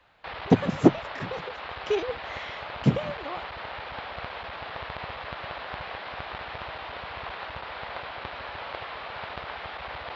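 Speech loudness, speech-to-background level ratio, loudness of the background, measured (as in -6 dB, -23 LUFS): -26.5 LUFS, 10.5 dB, -37.0 LUFS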